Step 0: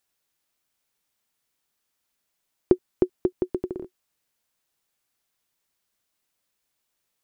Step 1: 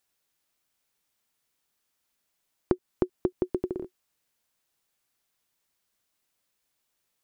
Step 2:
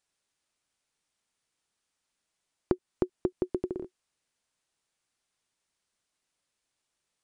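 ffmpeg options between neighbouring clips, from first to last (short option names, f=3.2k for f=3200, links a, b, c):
-af "acompressor=threshold=-21dB:ratio=5"
-af "aresample=22050,aresample=44100,volume=-2dB"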